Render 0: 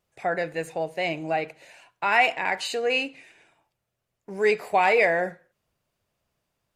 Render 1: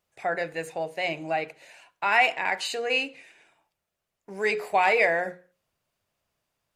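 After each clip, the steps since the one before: bass shelf 490 Hz -4.5 dB; hum notches 60/120/180/240/300/360/420/480/540 Hz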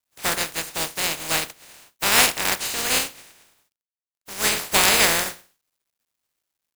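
spectral contrast reduction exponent 0.18; bit crusher 12-bit; trim +4.5 dB

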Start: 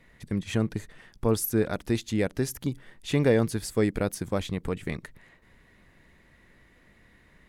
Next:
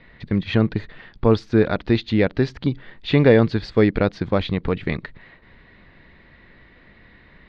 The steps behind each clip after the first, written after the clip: elliptic low-pass 4.3 kHz, stop band 80 dB; trim +9 dB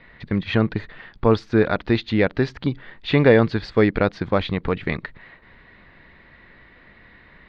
peaking EQ 1.3 kHz +5 dB 2.4 oct; trim -2 dB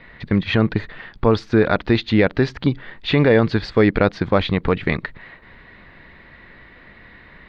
loudness maximiser +8 dB; trim -3.5 dB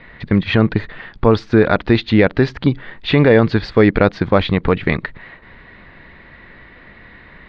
distance through air 67 m; trim +3.5 dB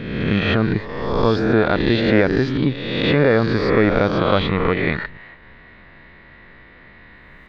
reverse spectral sustain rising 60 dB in 1.37 s; trim -6 dB

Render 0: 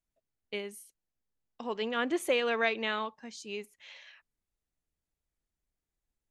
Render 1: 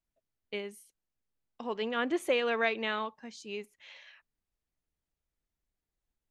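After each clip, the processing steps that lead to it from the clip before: treble shelf 5.9 kHz -7 dB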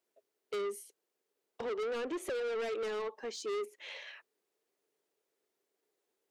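compression 4:1, threshold -38 dBFS, peak gain reduction 12.5 dB; resonant high-pass 410 Hz, resonance Q 4.9; saturation -39.5 dBFS, distortion -6 dB; trim +6 dB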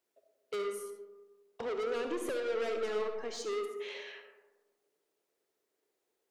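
algorithmic reverb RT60 1.3 s, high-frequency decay 0.3×, pre-delay 25 ms, DRR 5 dB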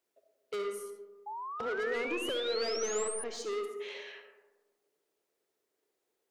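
painted sound rise, 1.26–3.24 s, 820–9900 Hz -40 dBFS

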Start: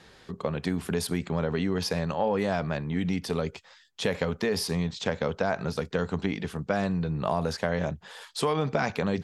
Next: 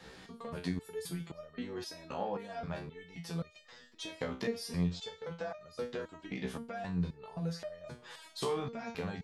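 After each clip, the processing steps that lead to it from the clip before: compression 3:1, threshold -35 dBFS, peak gain reduction 10.5 dB; reverse echo 491 ms -23 dB; resonator arpeggio 3.8 Hz 64–610 Hz; trim +8 dB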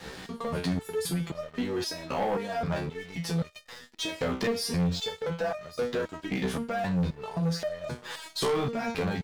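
waveshaping leveller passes 3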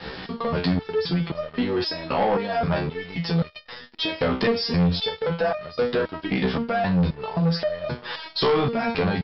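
Chebyshev low-pass 5.3 kHz, order 8; trim +7.5 dB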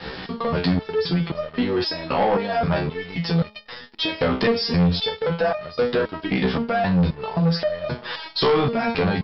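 de-hum 212.3 Hz, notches 5; trim +2 dB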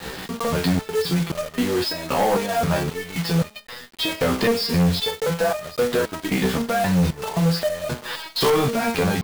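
block-companded coder 3-bit

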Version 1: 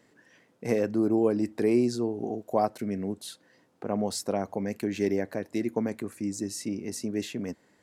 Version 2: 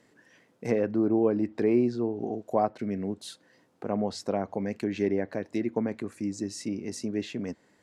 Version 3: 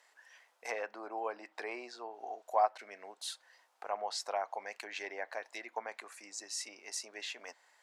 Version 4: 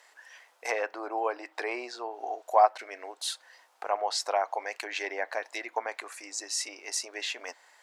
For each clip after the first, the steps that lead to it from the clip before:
low-pass that closes with the level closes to 2.6 kHz, closed at -23.5 dBFS
Chebyshev high-pass 780 Hz, order 3; trim +1.5 dB
brick-wall FIR high-pass 240 Hz; trim +8 dB

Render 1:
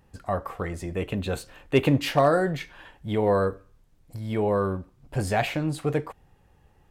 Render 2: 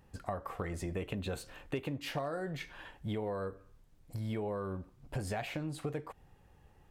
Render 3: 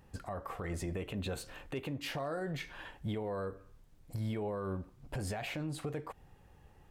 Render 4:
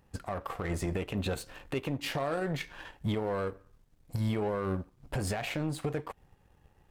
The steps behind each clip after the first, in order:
compression 12:1, threshold -31 dBFS, peak gain reduction 17 dB; trim -2.5 dB
peak limiter -31.5 dBFS, peak gain reduction 9 dB; trim +2 dB
power-law waveshaper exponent 1.4; trim +7 dB

